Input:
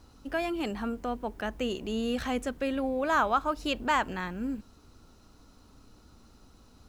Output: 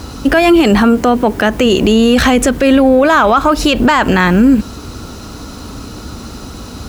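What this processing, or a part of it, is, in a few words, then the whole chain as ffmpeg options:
mastering chain: -filter_complex "[0:a]highpass=48,equalizer=f=860:t=o:w=0.77:g=-2,acompressor=threshold=-34dB:ratio=1.5,asoftclip=type=tanh:threshold=-21dB,alimiter=level_in=31dB:limit=-1dB:release=50:level=0:latency=1,asettb=1/sr,asplit=3[a][b][c];[a]atrim=end=0.814[d];[b]atrim=start=0.81:end=1.66,asetpts=PTS-STARTPTS,afade=t=in:d=0.004:c=qsin,afade=t=out:st=0.846:d=0.004:c=qsin,highpass=75[e];[c]atrim=start=1.656[f];[d][e]acrossfade=d=0.004:c1=hsin:c2=qsin[g];[g][f]acrossfade=d=0.004:c1=qsin:c2=hsin,volume=-1dB"

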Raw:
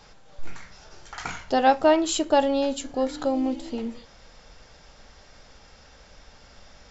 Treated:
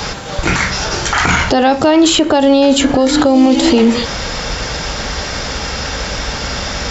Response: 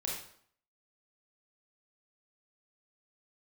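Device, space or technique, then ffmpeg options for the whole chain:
mastering chain: -filter_complex "[0:a]highpass=42,equalizer=f=670:t=o:w=0.77:g=-3,acrossover=split=390|3200[a][b][c];[a]acompressor=threshold=-38dB:ratio=4[d];[b]acompressor=threshold=-36dB:ratio=4[e];[c]acompressor=threshold=-50dB:ratio=4[f];[d][e][f]amix=inputs=3:normalize=0,acompressor=threshold=-36dB:ratio=2.5,alimiter=level_in=33dB:limit=-1dB:release=50:level=0:latency=1,volume=-1dB"

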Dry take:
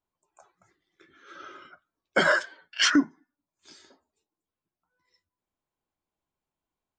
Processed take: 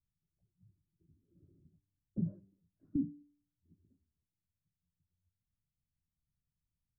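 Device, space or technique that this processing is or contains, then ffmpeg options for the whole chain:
the neighbour's flat through the wall: -af "lowpass=f=170:w=0.5412,lowpass=f=170:w=1.3066,equalizer=f=100:t=o:w=0.77:g=4.5,bandreject=f=97.09:t=h:w=4,bandreject=f=194.18:t=h:w=4,bandreject=f=291.27:t=h:w=4,bandreject=f=388.36:t=h:w=4,volume=6dB"

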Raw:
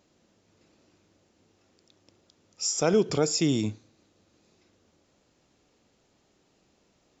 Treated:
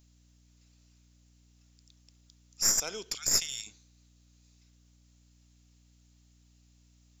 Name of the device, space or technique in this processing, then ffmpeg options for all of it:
valve amplifier with mains hum: -filter_complex "[0:a]asplit=3[a][b][c];[a]afade=t=out:st=3.14:d=0.02[d];[b]highpass=f=1.4k:w=0.5412,highpass=f=1.4k:w=1.3066,afade=t=in:st=3.14:d=0.02,afade=t=out:st=3.66:d=0.02[e];[c]afade=t=in:st=3.66:d=0.02[f];[d][e][f]amix=inputs=3:normalize=0,aderivative,aeval=exprs='(tanh(12.6*val(0)+0.7)-tanh(0.7))/12.6':c=same,aeval=exprs='val(0)+0.000316*(sin(2*PI*60*n/s)+sin(2*PI*2*60*n/s)/2+sin(2*PI*3*60*n/s)/3+sin(2*PI*4*60*n/s)/4+sin(2*PI*5*60*n/s)/5)':c=same,volume=8.5dB"

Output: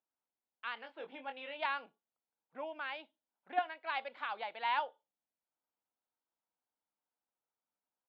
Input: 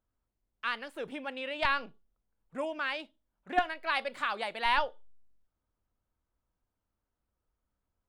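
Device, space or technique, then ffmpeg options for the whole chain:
phone earpiece: -filter_complex "[0:a]asplit=3[a][b][c];[a]afade=t=out:st=0.76:d=0.02[d];[b]asplit=2[e][f];[f]adelay=22,volume=-6dB[g];[e][g]amix=inputs=2:normalize=0,afade=t=in:st=0.76:d=0.02,afade=t=out:st=1.56:d=0.02[h];[c]afade=t=in:st=1.56:d=0.02[i];[d][h][i]amix=inputs=3:normalize=0,highpass=390,equalizer=f=390:t=q:w=4:g=-5,equalizer=f=580:t=q:w=4:g=-3,equalizer=f=830:t=q:w=4:g=4,equalizer=f=1.2k:t=q:w=4:g=-4,equalizer=f=1.8k:t=q:w=4:g=-4,equalizer=f=2.7k:t=q:w=4:g=-3,lowpass=f=3.5k:w=0.5412,lowpass=f=3.5k:w=1.3066,volume=-5dB"

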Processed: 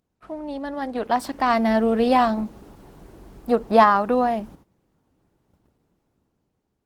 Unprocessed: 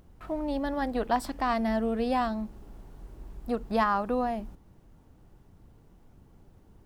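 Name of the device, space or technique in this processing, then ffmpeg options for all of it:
video call: -filter_complex "[0:a]asplit=3[a][b][c];[a]afade=t=out:st=0.72:d=0.02[d];[b]highpass=44,afade=t=in:st=0.72:d=0.02,afade=t=out:st=1.41:d=0.02[e];[c]afade=t=in:st=1.41:d=0.02[f];[d][e][f]amix=inputs=3:normalize=0,asettb=1/sr,asplit=3[g][h][i];[g]atrim=end=2.754[j];[h]atrim=start=2.75:end=3.9,asetpts=PTS-STARTPTS,afade=t=in:d=0.004:c=qsin,afade=t=out:st=1.146:d=0.004:c=qsin,adynamicequalizer=threshold=0.0158:dfrequency=580:dqfactor=0.73:tfrequency=580:tqfactor=0.73:attack=5:release=100:ratio=0.375:range=2.5:mode=boostabove:tftype=bell[k];[i]atrim=start=3.896[l];[j][k]acrossfade=d=0.004:c1=hsin:c2=qsin[m];[m][l]acrossfade=d=0.004:c1=qsin:c2=hsin,highpass=f=180:p=1,dynaudnorm=f=290:g=9:m=12.5dB,agate=range=-14dB:threshold=-48dB:ratio=16:detection=peak" -ar 48000 -c:a libopus -b:a 16k

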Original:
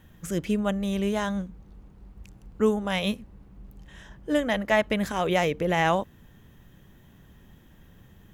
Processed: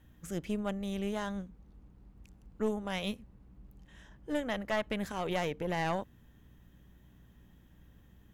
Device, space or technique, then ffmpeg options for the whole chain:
valve amplifier with mains hum: -af "aeval=exprs='(tanh(6.31*val(0)+0.5)-tanh(0.5))/6.31':c=same,aeval=exprs='val(0)+0.00224*(sin(2*PI*60*n/s)+sin(2*PI*2*60*n/s)/2+sin(2*PI*3*60*n/s)/3+sin(2*PI*4*60*n/s)/4+sin(2*PI*5*60*n/s)/5)':c=same,volume=-7dB"

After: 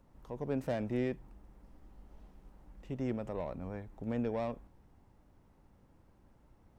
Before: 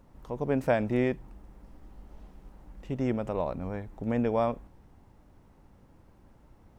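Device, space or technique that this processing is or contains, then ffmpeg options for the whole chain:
one-band saturation: -filter_complex "[0:a]acrossover=split=450|4300[a][b][c];[b]asoftclip=type=tanh:threshold=-28dB[d];[a][d][c]amix=inputs=3:normalize=0,volume=-6.5dB"

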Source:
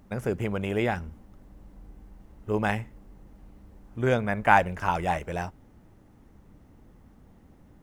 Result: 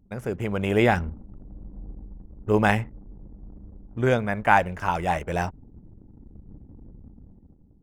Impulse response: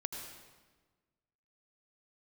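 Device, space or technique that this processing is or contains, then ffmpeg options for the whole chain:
voice memo with heavy noise removal: -af "anlmdn=0.00251,dynaudnorm=f=120:g=11:m=11.5dB,volume=-2dB"

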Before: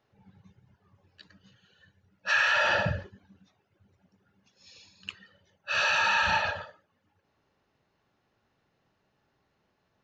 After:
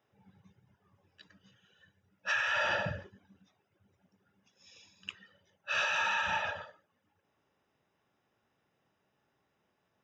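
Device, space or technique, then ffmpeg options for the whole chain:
PA system with an anti-feedback notch: -filter_complex "[0:a]asettb=1/sr,asplit=3[a][b][c];[a]atrim=end=2.314[d];[b]atrim=start=2.31:end=2.75,asetpts=PTS-STARTPTS,afade=t=in:d=0.004:c=qsin,afade=t=out:st=0.436:d=0.004:c=qsin,equalizer=f=68:w=0.48:g=9.5[e];[c]atrim=start=2.746[f];[d][e]acrossfade=d=0.004:c1=hsin:c2=qsin[g];[g][f]acrossfade=d=0.004:c1=qsin:c2=hsin,highpass=f=120:p=1,asuperstop=centerf=4300:order=12:qfactor=7.2,alimiter=limit=-18dB:level=0:latency=1:release=449,volume=-3dB"

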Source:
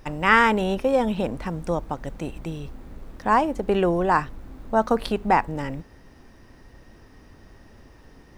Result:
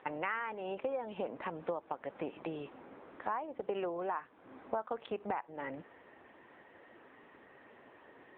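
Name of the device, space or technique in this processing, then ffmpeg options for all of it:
voicemail: -af "highpass=430,lowpass=2.8k,acompressor=threshold=-35dB:ratio=8,volume=2dB" -ar 8000 -c:a libopencore_amrnb -b:a 6700

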